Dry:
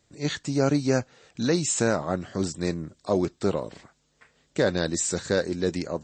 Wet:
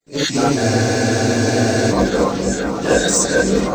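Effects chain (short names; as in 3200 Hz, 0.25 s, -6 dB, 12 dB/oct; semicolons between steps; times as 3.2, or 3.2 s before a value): bin magnitudes rounded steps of 30 dB; expander -59 dBFS; low shelf 260 Hz -11.5 dB; in parallel at -1 dB: limiter -20.5 dBFS, peak gain reduction 7.5 dB; on the sum: granular stretch 0.62×, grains 21 ms; added harmonics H 5 -7 dB, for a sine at -8 dBFS; on a send: repeats that get brighter 0.468 s, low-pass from 400 Hz, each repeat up 2 oct, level -3 dB; on the sum: companded quantiser 8-bit; non-linear reverb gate 90 ms rising, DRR -7 dB; spectral freeze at 0.61, 1.31 s; gain -7 dB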